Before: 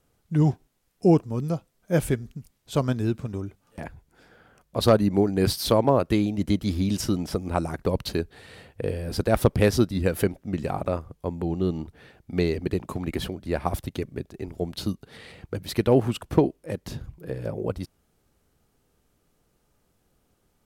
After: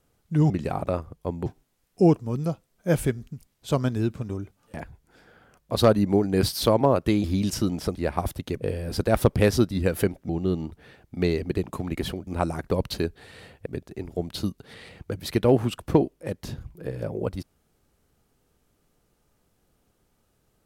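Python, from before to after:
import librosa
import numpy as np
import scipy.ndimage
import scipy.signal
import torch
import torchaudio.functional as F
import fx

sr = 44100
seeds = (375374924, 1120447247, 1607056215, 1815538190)

y = fx.edit(x, sr, fx.cut(start_s=6.28, length_s=0.43),
    fx.swap(start_s=7.42, length_s=1.39, other_s=13.43, other_length_s=0.66),
    fx.move(start_s=10.49, length_s=0.96, to_s=0.5), tone=tone)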